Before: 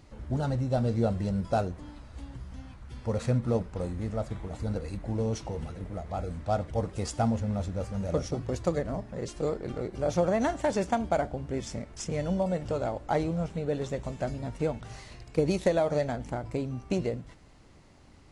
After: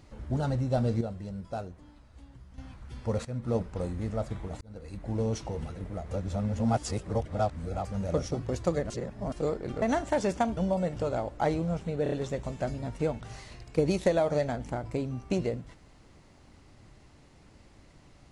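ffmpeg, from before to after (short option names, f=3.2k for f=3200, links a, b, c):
-filter_complex "[0:a]asplit=14[a][b][c][d][e][f][g][h][i][j][k][l][m][n];[a]atrim=end=1.012[o];[b]atrim=start=1.008:end=2.582,asetpts=PTS-STARTPTS,volume=-9dB[p];[c]atrim=start=2.578:end=3.25,asetpts=PTS-STARTPTS,afade=t=out:st=0.668:d=0.004:c=hsin:silence=0.125893[q];[d]atrim=start=3.25:end=4.61,asetpts=PTS-STARTPTS,afade=t=in:d=0.35:silence=0.125893,afade=t=out:st=1.356:d=0.004:c=hsin[r];[e]atrim=start=4.61:end=6.112,asetpts=PTS-STARTPTS,afade=t=in:d=0.56[s];[f]atrim=start=6.108:end=7.852,asetpts=PTS-STARTPTS,areverse[t];[g]atrim=start=7.848:end=8.902[u];[h]atrim=start=8.898:end=9.322,asetpts=PTS-STARTPTS,areverse[v];[i]atrim=start=9.318:end=9.822[w];[j]atrim=start=10.338:end=11.092[x];[k]atrim=start=12.258:end=13.752[y];[l]atrim=start=13.718:end=13.752[z];[m]atrim=start=13.718:end=13.752[aa];[n]atrim=start=13.718[ab];[o][p]acrossfade=d=0.004:c1=hsin:c2=hsin[ac];[q][r][s]concat=n=3:v=0:a=1[ad];[ac][ad]acrossfade=d=0.004:c1=hsin:c2=hsin[ae];[ae][t]acrossfade=d=0.004:c1=hsin:c2=hsin[af];[af][u]acrossfade=d=0.004:c1=hsin:c2=hsin[ag];[ag][v]acrossfade=d=0.004:c1=hsin:c2=hsin[ah];[ah][w]acrossfade=d=0.004:c1=hsin:c2=hsin[ai];[ai][x]acrossfade=d=0.004:c1=hsin:c2=hsin[aj];[aj][y]acrossfade=d=0.004:c1=hsin:c2=hsin[ak];[ak][z]acrossfade=d=0.004:c1=hsin:c2=hsin[al];[al][aa]acrossfade=d=0.004:c1=hsin:c2=hsin[am];[am][ab]acrossfade=d=0.004:c1=hsin:c2=hsin"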